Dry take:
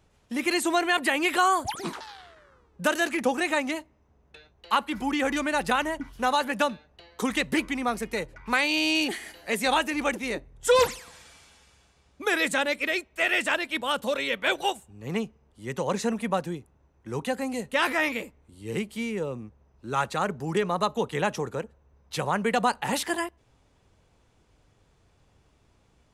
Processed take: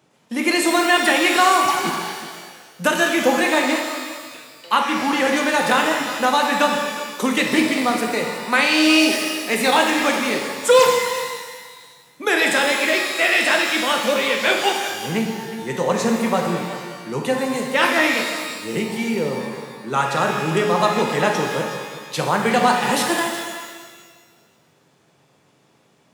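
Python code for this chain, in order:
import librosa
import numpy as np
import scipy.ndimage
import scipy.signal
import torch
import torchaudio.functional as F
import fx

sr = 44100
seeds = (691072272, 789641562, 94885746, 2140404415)

p1 = scipy.signal.sosfilt(scipy.signal.butter(4, 140.0, 'highpass', fs=sr, output='sos'), x)
p2 = p1 + fx.echo_single(p1, sr, ms=368, db=-14.5, dry=0)
p3 = fx.rev_shimmer(p2, sr, seeds[0], rt60_s=1.5, semitones=12, shimmer_db=-8, drr_db=1.5)
y = p3 * 10.0 ** (5.5 / 20.0)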